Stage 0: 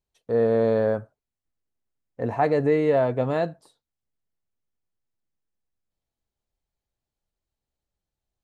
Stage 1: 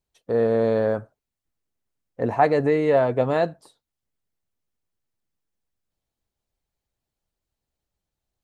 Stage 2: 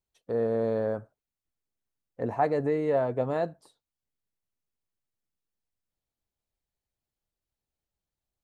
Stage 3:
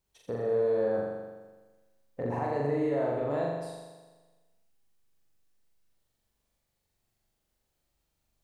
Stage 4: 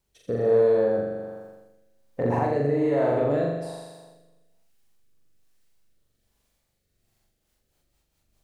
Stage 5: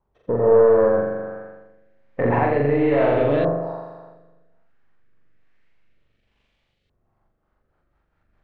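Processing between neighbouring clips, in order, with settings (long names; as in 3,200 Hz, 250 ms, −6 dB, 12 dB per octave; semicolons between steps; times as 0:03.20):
harmonic and percussive parts rebalanced percussive +5 dB
dynamic equaliser 3,000 Hz, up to −6 dB, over −39 dBFS, Q 0.72; level −6.5 dB
downward compressor, threshold −33 dBFS, peak gain reduction 12.5 dB; brickwall limiter −31.5 dBFS, peak gain reduction 10.5 dB; flutter between parallel walls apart 7.2 metres, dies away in 1.3 s; level +6 dB
rotating-speaker cabinet horn 1.2 Hz, later 5 Hz, at 0:06.91; level +8.5 dB
gain on one half-wave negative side −3 dB; auto-filter low-pass saw up 0.29 Hz 990–3,200 Hz; level +5.5 dB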